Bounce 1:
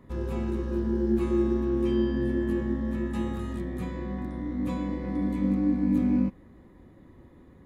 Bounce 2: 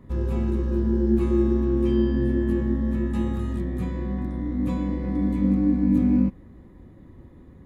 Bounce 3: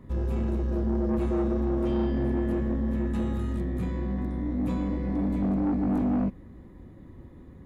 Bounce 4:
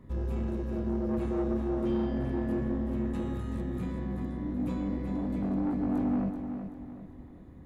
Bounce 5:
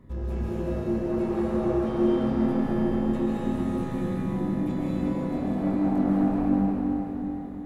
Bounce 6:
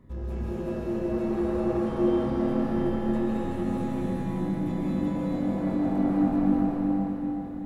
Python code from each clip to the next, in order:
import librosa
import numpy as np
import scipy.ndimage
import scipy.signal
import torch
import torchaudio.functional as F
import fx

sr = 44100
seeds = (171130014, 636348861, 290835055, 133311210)

y1 = fx.low_shelf(x, sr, hz=250.0, db=8.0)
y2 = 10.0 ** (-22.0 / 20.0) * np.tanh(y1 / 10.0 ** (-22.0 / 20.0))
y3 = fx.echo_feedback(y2, sr, ms=382, feedback_pct=41, wet_db=-8)
y3 = F.gain(torch.from_numpy(y3), -4.0).numpy()
y4 = fx.rev_freeverb(y3, sr, rt60_s=3.5, hf_ratio=1.0, predelay_ms=100, drr_db=-6.5)
y5 = y4 + 10.0 ** (-3.0 / 20.0) * np.pad(y4, (int(376 * sr / 1000.0), 0))[:len(y4)]
y5 = F.gain(torch.from_numpy(y5), -2.5).numpy()